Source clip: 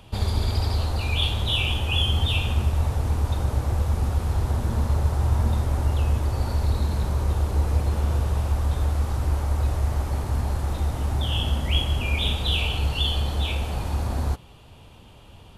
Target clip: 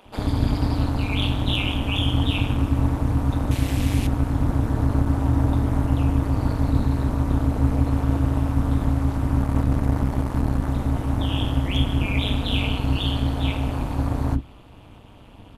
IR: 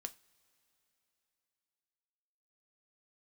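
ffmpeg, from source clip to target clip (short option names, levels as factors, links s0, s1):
-filter_complex "[0:a]volume=4.73,asoftclip=hard,volume=0.211,asettb=1/sr,asplit=3[s0][s1][s2];[s0]atrim=end=3.514[s3];[s1]atrim=start=3.51:end=4.07,asetpts=PTS-STARTPTS,afade=t=in:d=0.004:c=qsin,afade=t=out:st=0.556:d=0.004:c=qsin,highshelf=f=1800:t=q:w=1.5:g=12[s4];[s2]atrim=start=4.066[s5];[s3][s4]acrossfade=d=0.004:c1=hsin:c2=qsin[s6];[s6][s5]acrossfade=d=0.004:c1=qsin:c2=hsin,acrossover=split=230[s7][s8];[s7]adelay=50[s9];[s9][s8]amix=inputs=2:normalize=0,tremolo=f=200:d=0.974,asettb=1/sr,asplit=3[s10][s11][s12];[s10]atrim=end=9.404[s13];[s11]atrim=start=9.4:end=10.68,asetpts=PTS-STARTPTS,afade=t=in:d=0.004:c=qsin,afade=t=out:st=1.276:d=0.004:c=qsin,aeval=exprs='0.2*(cos(1*acos(clip(val(0)/0.2,-1,1)))-cos(1*PI/2))+0.0178*(cos(6*acos(clip(val(0)/0.2,-1,1)))-cos(6*PI/2))':c=same[s14];[s12]atrim=start=10.676[s15];[s13][s14]acrossfade=d=0.004:c1=hsin:c2=qsin[s16];[s16][s15]acrossfade=d=0.004:c1=qsin:c2=hsin,asplit=2[s17][s18];[1:a]atrim=start_sample=2205,lowpass=3000[s19];[s18][s19]afir=irnorm=-1:irlink=0,volume=1.78[s20];[s17][s20]amix=inputs=2:normalize=0"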